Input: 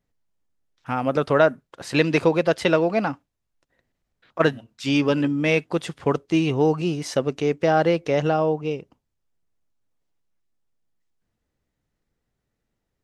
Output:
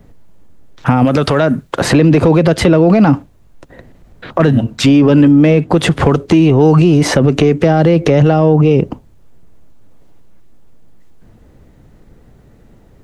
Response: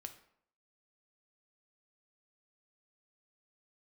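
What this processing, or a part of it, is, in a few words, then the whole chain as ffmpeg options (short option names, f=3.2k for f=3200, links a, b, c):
mastering chain: -filter_complex "[0:a]equalizer=f=5.3k:t=o:w=0.27:g=-2.5,acrossover=split=280|1300|2800[a][b][c][d];[a]acompressor=threshold=-32dB:ratio=4[e];[b]acompressor=threshold=-32dB:ratio=4[f];[c]acompressor=threshold=-40dB:ratio=4[g];[d]acompressor=threshold=-43dB:ratio=4[h];[e][f][g][h]amix=inputs=4:normalize=0,acompressor=threshold=-32dB:ratio=1.5,asoftclip=type=tanh:threshold=-20dB,tiltshelf=f=1.1k:g=6.5,asoftclip=type=hard:threshold=-19dB,alimiter=level_in=29.5dB:limit=-1dB:release=50:level=0:latency=1,asettb=1/sr,asplit=3[i][j][k];[i]atrim=end=1.054[l];[j]atrim=start=1.05:end=1.82,asetpts=PTS-STARTPTS,afade=t=in:d=0.004:c=qsin,afade=t=out:st=0.766:d=0.004:c=qsin,tiltshelf=f=970:g=-4[m];[k]atrim=start=1.816[n];[l][m]acrossfade=d=0.004:c1=hsin:c2=qsin[o];[o][n]acrossfade=d=0.004:c1=qsin:c2=hsin,volume=-1dB"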